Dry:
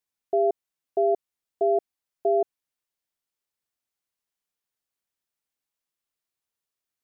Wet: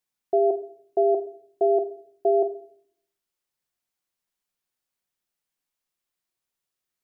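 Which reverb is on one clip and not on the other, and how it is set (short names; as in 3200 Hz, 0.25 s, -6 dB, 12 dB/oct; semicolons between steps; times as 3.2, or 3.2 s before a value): shoebox room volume 860 m³, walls furnished, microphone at 0.96 m; gain +1.5 dB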